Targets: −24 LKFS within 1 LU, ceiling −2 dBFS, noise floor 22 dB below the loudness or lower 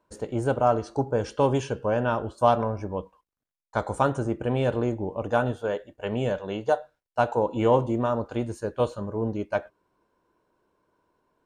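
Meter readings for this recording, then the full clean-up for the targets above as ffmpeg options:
integrated loudness −26.5 LKFS; sample peak −7.0 dBFS; target loudness −24.0 LKFS
→ -af "volume=2.5dB"

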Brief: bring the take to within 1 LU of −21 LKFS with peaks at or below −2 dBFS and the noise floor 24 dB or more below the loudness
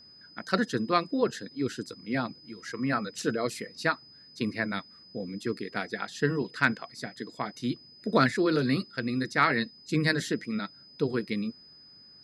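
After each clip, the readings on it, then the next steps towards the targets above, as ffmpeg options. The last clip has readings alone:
interfering tone 5,000 Hz; level of the tone −51 dBFS; integrated loudness −30.0 LKFS; sample peak −8.0 dBFS; target loudness −21.0 LKFS
→ -af "bandreject=frequency=5000:width=30"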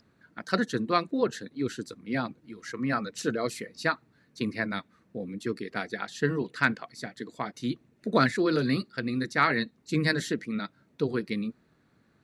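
interfering tone none found; integrated loudness −30.0 LKFS; sample peak −8.0 dBFS; target loudness −21.0 LKFS
→ -af "volume=9dB,alimiter=limit=-2dB:level=0:latency=1"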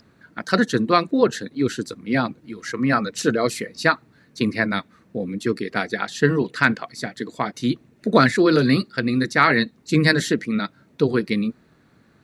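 integrated loudness −21.5 LKFS; sample peak −2.0 dBFS; background noise floor −57 dBFS

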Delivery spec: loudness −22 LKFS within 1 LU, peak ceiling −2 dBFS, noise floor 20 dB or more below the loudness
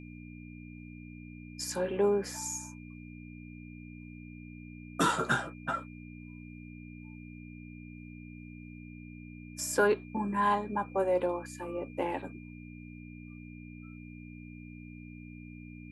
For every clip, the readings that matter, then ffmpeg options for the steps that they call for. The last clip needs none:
mains hum 60 Hz; hum harmonics up to 300 Hz; level of the hum −45 dBFS; interfering tone 2,400 Hz; level of the tone −55 dBFS; integrated loudness −32.0 LKFS; sample peak −13.5 dBFS; target loudness −22.0 LKFS
→ -af "bandreject=frequency=60:width_type=h:width=4,bandreject=frequency=120:width_type=h:width=4,bandreject=frequency=180:width_type=h:width=4,bandreject=frequency=240:width_type=h:width=4,bandreject=frequency=300:width_type=h:width=4"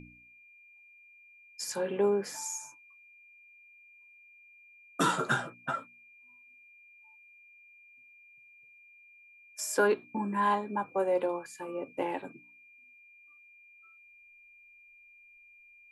mains hum none found; interfering tone 2,400 Hz; level of the tone −55 dBFS
→ -af "bandreject=frequency=2400:width=30"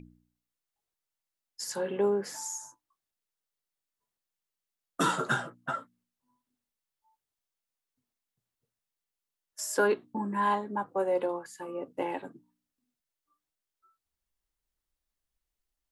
interfering tone none found; integrated loudness −31.5 LKFS; sample peak −14.0 dBFS; target loudness −22.0 LKFS
→ -af "volume=9.5dB"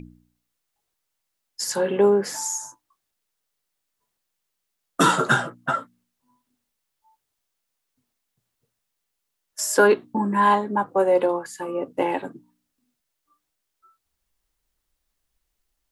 integrated loudness −22.0 LKFS; sample peak −4.5 dBFS; background noise floor −79 dBFS

